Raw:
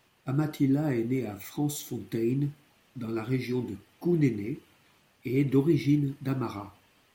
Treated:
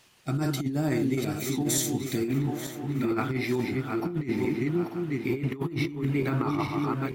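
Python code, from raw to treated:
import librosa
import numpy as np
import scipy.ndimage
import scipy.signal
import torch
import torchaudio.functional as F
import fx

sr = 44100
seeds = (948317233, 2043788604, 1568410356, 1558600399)

y = fx.reverse_delay_fb(x, sr, ms=445, feedback_pct=61, wet_db=-5.5)
y = fx.peak_eq(y, sr, hz=fx.steps((0.0, 6600.0), (2.28, 1200.0)), db=9.5, octaves=2.3)
y = fx.over_compress(y, sr, threshold_db=-26.0, ratio=-0.5)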